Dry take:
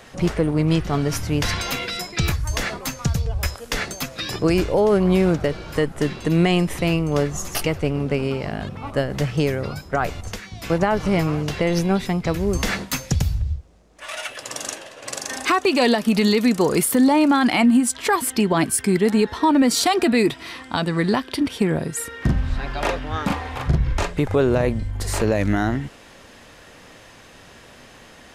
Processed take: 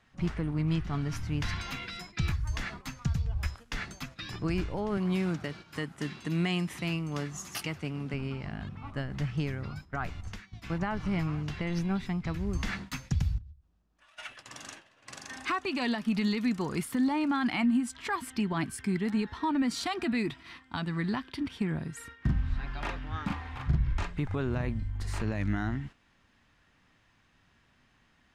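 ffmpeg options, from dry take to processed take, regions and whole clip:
-filter_complex "[0:a]asettb=1/sr,asplit=3[s0][s1][s2];[s0]atrim=end=4.974[s3];[s1]atrim=start=4.97:end=8.14,asetpts=PTS-STARTPTS,afade=t=in:d=0.004:c=qsin,afade=t=out:st=3.166:d=0.004:c=qsin,highpass=150,highshelf=f=4200:g=9[s4];[s2]atrim=start=8.136[s5];[s3][s4]acrossfade=d=0.004:c1=hsin:c2=qsin[s6];[s6][s5]acrossfade=d=0.004:c1=qsin:c2=hsin,asettb=1/sr,asplit=3[s7][s8][s9];[s7]atrim=end=13.384[s10];[s8]atrim=start=13.38:end=14.18,asetpts=PTS-STARTPTS,afade=t=in:d=0.004:c=qsin,afade=t=out:st=0.796:d=0.004:c=qsin,equalizer=f=2100:t=o:w=0.25:g=-7.5,acompressor=threshold=0.0158:ratio=16:attack=3.2:release=140:knee=1:detection=peak[s11];[s9]atrim=start=14.176[s12];[s10][s11]acrossfade=d=0.004:c1=hsin:c2=qsin[s13];[s13][s12]acrossfade=d=0.004:c1=qsin:c2=hsin,equalizer=f=510:t=o:w=1.2:g=-14,agate=range=0.355:threshold=0.0158:ratio=16:detection=peak,aemphasis=mode=reproduction:type=75kf,volume=0.447"

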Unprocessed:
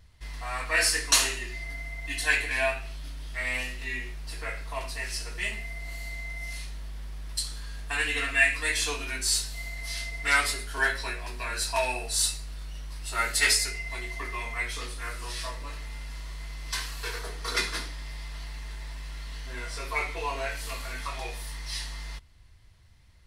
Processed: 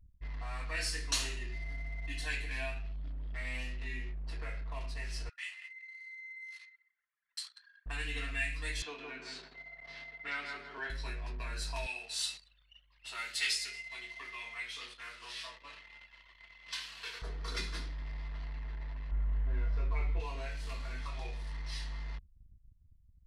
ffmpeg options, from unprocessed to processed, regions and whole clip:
-filter_complex "[0:a]asettb=1/sr,asplit=3[s0][s1][s2];[s0]atrim=end=5.294[s3];[s1]atrim=start=5.29:end=7.86,asetpts=PTS-STARTPTS,afade=t=in:d=0.004:c=qsin,afade=t=out:st=2.566:d=0.004:c=qsin,highpass=f=1200:w=0.5412,highpass=f=1200:w=1.3066,asplit=2[s4][s5];[s5]adelay=189,lowpass=f=4300:p=1,volume=0.251,asplit=2[s6][s7];[s7]adelay=189,lowpass=f=4300:p=1,volume=0.39,asplit=2[s8][s9];[s9]adelay=189,lowpass=f=4300:p=1,volume=0.39,asplit=2[s10][s11];[s11]adelay=189,lowpass=f=4300:p=1,volume=0.39[s12];[s4][s6][s8][s10][s12]amix=inputs=5:normalize=0,atrim=end_sample=113337[s13];[s2]atrim=start=7.856[s14];[s3][s13]acrossfade=d=0.004:c1=hsin:c2=qsin[s15];[s15][s14]acrossfade=d=0.004:c1=qsin:c2=hsin,asettb=1/sr,asplit=3[s16][s17][s18];[s16]atrim=end=8.824[s19];[s17]atrim=start=8.82:end=10.9,asetpts=PTS-STARTPTS,afade=t=in:d=0.004:c=qsin,afade=t=out:st=2.076:d=0.004:c=qsin,highpass=290,lowpass=2900,asplit=2[s20][s21];[s21]adelay=161,lowpass=f=1900:p=1,volume=0.631,asplit=2[s22][s23];[s23]adelay=161,lowpass=f=1900:p=1,volume=0.31,asplit=2[s24][s25];[s25]adelay=161,lowpass=f=1900:p=1,volume=0.31,asplit=2[s26][s27];[s27]adelay=161,lowpass=f=1900:p=1,volume=0.31[s28];[s20][s22][s24][s26][s28]amix=inputs=5:normalize=0,atrim=end_sample=91728[s29];[s18]atrim=start=10.896[s30];[s19][s29]acrossfade=d=0.004:c1=hsin:c2=qsin[s31];[s31][s30]acrossfade=d=0.004:c1=qsin:c2=hsin,asettb=1/sr,asplit=3[s32][s33][s34];[s32]atrim=end=11.864[s35];[s33]atrim=start=11.86:end=17.22,asetpts=PTS-STARTPTS,afade=t=in:d=0.004:c=qsin,afade=t=out:st=5.356:d=0.004:c=qsin,highpass=f=1000:p=1,equalizer=f=3000:t=o:w=0.92:g=7.5,aecho=1:1:225:0.0708,atrim=end_sample=236376[s36];[s34]atrim=start=17.216[s37];[s35][s36]acrossfade=d=0.004:c1=hsin:c2=qsin[s38];[s38][s37]acrossfade=d=0.004:c1=qsin:c2=hsin,asettb=1/sr,asplit=3[s39][s40][s41];[s39]atrim=end=19.114[s42];[s40]atrim=start=19.11:end=20.2,asetpts=PTS-STARTPTS,afade=t=in:d=0.004:c=qsin,afade=t=out:st=1.086:d=0.004:c=qsin,lowpass=f=1600:p=1,lowshelf=f=100:g=10.5[s43];[s41]atrim=start=20.196[s44];[s42][s43]acrossfade=d=0.004:c1=hsin:c2=qsin[s45];[s45][s44]acrossfade=d=0.004:c1=qsin:c2=hsin,aemphasis=mode=reproduction:type=75fm,anlmdn=0.0251,acrossover=split=240|3000[s46][s47][s48];[s47]acompressor=threshold=0.00316:ratio=2[s49];[s46][s49][s48]amix=inputs=3:normalize=0,volume=0.75"

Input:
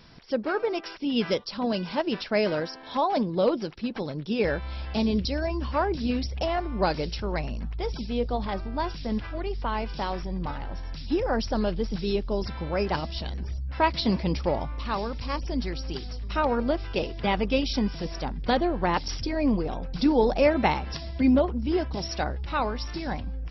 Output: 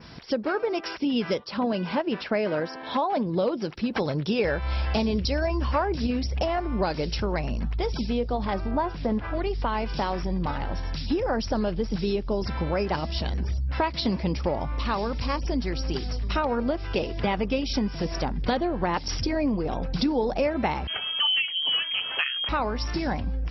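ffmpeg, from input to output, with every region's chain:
-filter_complex "[0:a]asettb=1/sr,asplit=3[s0][s1][s2];[s0]atrim=end=1.404[s3];[s1]atrim=start=1.4:end=3.26,asetpts=PTS-STARTPTS,afade=t=in:d=0.004:c=qsin,afade=t=out:st=1.856:d=0.004:c=qsin,lowpass=3800,lowshelf=f=61:g=-11[s4];[s2]atrim=start=3.256[s5];[s3][s4]acrossfade=d=0.004:c1=hsin:c2=qsin[s6];[s6][s5]acrossfade=d=0.004:c1=qsin:c2=hsin,asettb=1/sr,asplit=3[s7][s8][s9];[s7]atrim=end=3.934[s10];[s8]atrim=start=3.93:end=6.07,asetpts=PTS-STARTPTS,afade=t=in:d=0.004:c=qsin,afade=t=out:st=2.136:d=0.004:c=qsin,equalizer=f=240:w=1.1:g=-5,acontrast=45[s11];[s9]atrim=start=6.066[s12];[s10][s11]acrossfade=d=0.004:c1=hsin:c2=qsin[s13];[s13][s12]acrossfade=d=0.004:c1=qsin:c2=hsin,asettb=1/sr,asplit=3[s14][s15][s16];[s14]atrim=end=8.714[s17];[s15]atrim=start=8.71:end=9.34,asetpts=PTS-STARTPTS,afade=t=in:d=0.004:c=qsin,afade=t=out:st=0.626:d=0.004:c=qsin,lowpass=f=1600:p=1,equalizer=f=810:t=o:w=2.7:g=6[s18];[s16]atrim=start=9.336[s19];[s17][s18]acrossfade=d=0.004:c1=hsin:c2=qsin[s20];[s20][s19]acrossfade=d=0.004:c1=qsin:c2=hsin,asettb=1/sr,asplit=3[s21][s22][s23];[s21]atrim=end=20.874[s24];[s22]atrim=start=20.87:end=22.49,asetpts=PTS-STARTPTS,afade=t=in:d=0.004:c=qsin,afade=t=out:st=1.616:d=0.004:c=qsin,adynamicequalizer=threshold=0.00562:dfrequency=1900:dqfactor=0.78:tfrequency=1900:tqfactor=0.78:attack=5:release=100:ratio=0.375:range=2:mode=boostabove:tftype=bell,lowpass=f=2800:t=q:w=0.5098,lowpass=f=2800:t=q:w=0.6013,lowpass=f=2800:t=q:w=0.9,lowpass=f=2800:t=q:w=2.563,afreqshift=-3300[s25];[s23]atrim=start=22.486[s26];[s24][s25]acrossfade=d=0.004:c1=hsin:c2=qsin[s27];[s27][s26]acrossfade=d=0.004:c1=qsin:c2=hsin,highpass=43,adynamicequalizer=threshold=0.00282:dfrequency=3800:dqfactor=1.9:tfrequency=3800:tqfactor=1.9:attack=5:release=100:ratio=0.375:range=2.5:mode=cutabove:tftype=bell,acompressor=threshold=0.0282:ratio=4,volume=2.37"

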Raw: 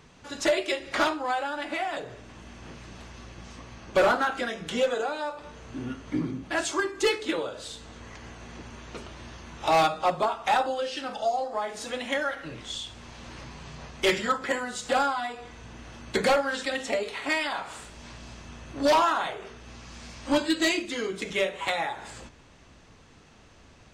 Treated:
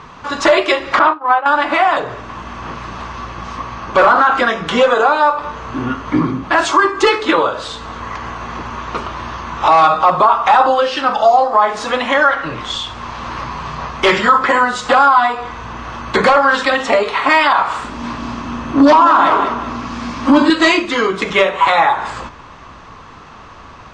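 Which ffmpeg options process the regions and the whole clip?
-filter_complex "[0:a]asettb=1/sr,asplit=3[s0][s1][s2];[s0]atrim=end=0.994[s3];[s1]atrim=start=0.99:end=1.46,asetpts=PTS-STARTPTS,afade=t=in:d=0.004:c=qsin,afade=t=out:st=0.466:d=0.004:c=qsin,agate=range=0.0224:threshold=0.0708:ratio=3:release=100:detection=peak,highpass=110,lowpass=2500[s4];[s2]atrim=start=1.456[s5];[s3][s4]acrossfade=d=0.004:c1=hsin:c2=qsin[s6];[s6][s5]acrossfade=d=0.004:c1=qsin:c2=hsin,asettb=1/sr,asplit=3[s7][s8][s9];[s7]atrim=end=17.844[s10];[s8]atrim=start=17.84:end=20.5,asetpts=PTS-STARTPTS,afade=t=in:d=0.004:c=qsin,afade=t=out:st=2.656:d=0.004:c=qsin,equalizer=f=260:t=o:w=0.65:g=15,aecho=1:1:194|388|582|776:0.266|0.0958|0.0345|0.0124,atrim=end_sample=117306[s11];[s9]atrim=start=20.496[s12];[s10][s11]acrossfade=d=0.004:c1=hsin:c2=qsin[s13];[s13][s12]acrossfade=d=0.004:c1=qsin:c2=hsin,lowpass=5200,equalizer=f=1100:t=o:w=0.78:g=14.5,alimiter=level_in=5.01:limit=0.891:release=50:level=0:latency=1,volume=0.891"

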